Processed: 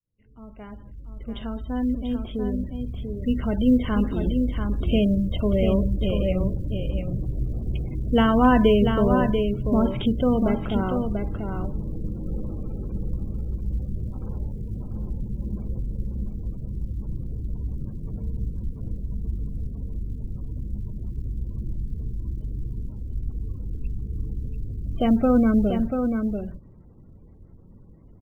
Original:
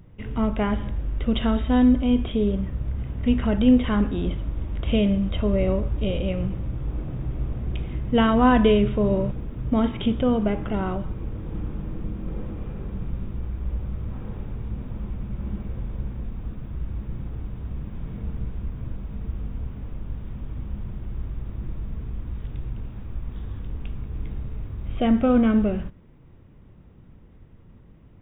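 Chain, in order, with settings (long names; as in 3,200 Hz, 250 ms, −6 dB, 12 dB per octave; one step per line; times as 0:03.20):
fade in at the beginning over 4.74 s
gate on every frequency bin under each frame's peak −30 dB strong
0:20.18–0:22.91: high-shelf EQ 2,000 Hz +9.5 dB
floating-point word with a short mantissa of 6 bits
single-tap delay 689 ms −6 dB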